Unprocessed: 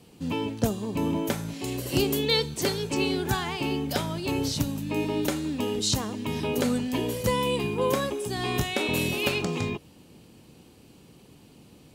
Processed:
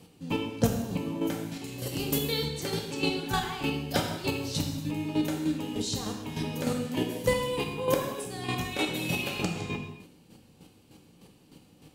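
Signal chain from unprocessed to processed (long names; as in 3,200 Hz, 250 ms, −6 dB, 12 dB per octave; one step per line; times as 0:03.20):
square-wave tremolo 3.3 Hz, depth 65%, duty 20%
reverb whose tail is shaped and stops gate 320 ms falling, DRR 1.5 dB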